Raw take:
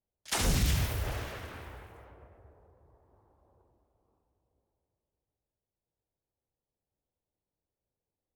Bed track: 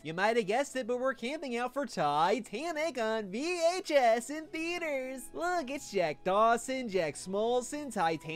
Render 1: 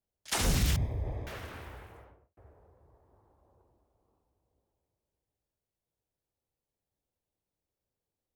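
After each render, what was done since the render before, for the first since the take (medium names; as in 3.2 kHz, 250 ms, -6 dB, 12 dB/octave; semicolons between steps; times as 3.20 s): 0.76–1.27 s: boxcar filter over 31 samples; 1.93–2.37 s: studio fade out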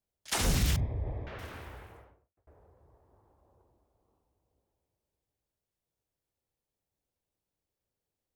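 0.80–1.39 s: distance through air 250 m; 1.92–2.47 s: fade out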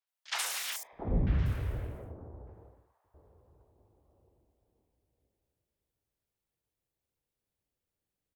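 three bands offset in time mids, highs, lows 70/670 ms, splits 760/5800 Hz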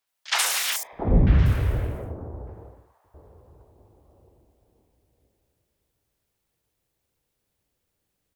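trim +11 dB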